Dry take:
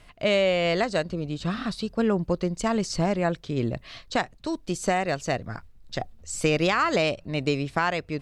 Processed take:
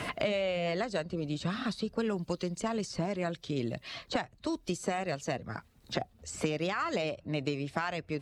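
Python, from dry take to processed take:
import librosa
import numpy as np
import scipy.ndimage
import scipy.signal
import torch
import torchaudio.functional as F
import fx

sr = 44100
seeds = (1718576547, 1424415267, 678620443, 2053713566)

y = fx.spec_quant(x, sr, step_db=15)
y = scipy.signal.sosfilt(scipy.signal.butter(2, 56.0, 'highpass', fs=sr, output='sos'), y)
y = fx.band_squash(y, sr, depth_pct=100)
y = y * 10.0 ** (-8.5 / 20.0)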